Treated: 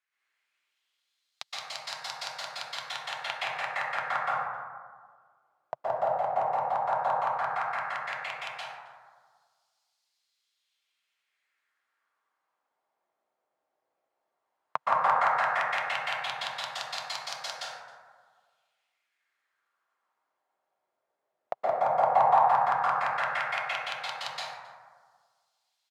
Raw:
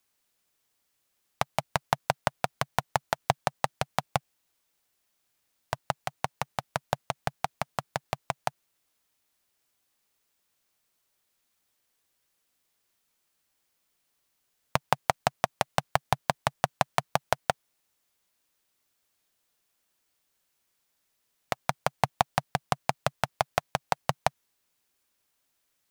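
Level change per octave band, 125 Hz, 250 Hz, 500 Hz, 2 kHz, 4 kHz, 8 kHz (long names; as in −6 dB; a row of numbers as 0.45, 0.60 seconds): −17.0 dB, below −10 dB, 0.0 dB, +3.0 dB, +1.0 dB, −6.5 dB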